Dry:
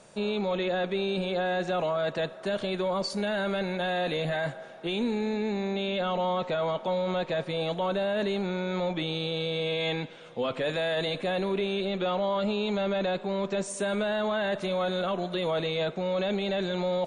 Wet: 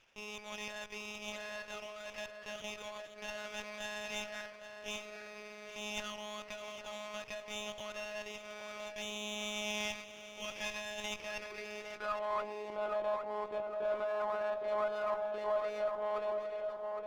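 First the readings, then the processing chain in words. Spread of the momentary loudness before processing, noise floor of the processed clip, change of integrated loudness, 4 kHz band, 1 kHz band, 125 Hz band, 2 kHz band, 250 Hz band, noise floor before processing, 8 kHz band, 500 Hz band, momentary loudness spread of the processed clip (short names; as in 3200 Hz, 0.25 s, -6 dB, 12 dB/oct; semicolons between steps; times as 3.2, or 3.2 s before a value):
3 LU, -51 dBFS, -10.5 dB, -9.5 dB, -9.0 dB, -25.5 dB, -8.0 dB, -20.5 dB, -44 dBFS, n/a, -10.5 dB, 10 LU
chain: ending faded out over 1.05 s; monotone LPC vocoder at 8 kHz 210 Hz; band-pass sweep 2900 Hz -> 970 Hz, 11.21–12.53; on a send: darkening echo 0.811 s, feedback 61%, low-pass 1100 Hz, level -3 dB; on the sum: running maximum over 5 samples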